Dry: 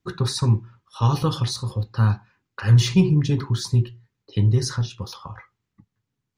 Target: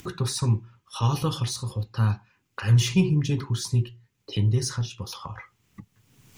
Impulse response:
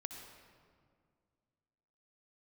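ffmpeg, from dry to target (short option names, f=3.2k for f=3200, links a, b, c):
-af "highshelf=f=7.1k:g=-4.5,acompressor=mode=upward:threshold=-25dB:ratio=2.5,aexciter=amount=1:drive=9:freq=2.3k,volume=-4dB"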